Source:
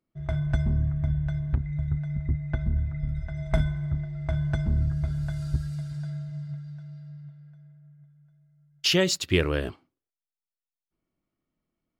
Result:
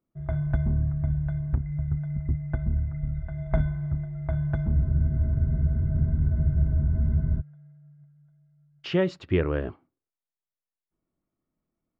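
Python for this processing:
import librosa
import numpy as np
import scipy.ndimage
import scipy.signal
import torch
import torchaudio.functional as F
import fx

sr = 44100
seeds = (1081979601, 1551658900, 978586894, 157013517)

y = scipy.signal.sosfilt(scipy.signal.butter(2, 1500.0, 'lowpass', fs=sr, output='sos'), x)
y = fx.spec_freeze(y, sr, seeds[0], at_s=4.76, hold_s=2.63)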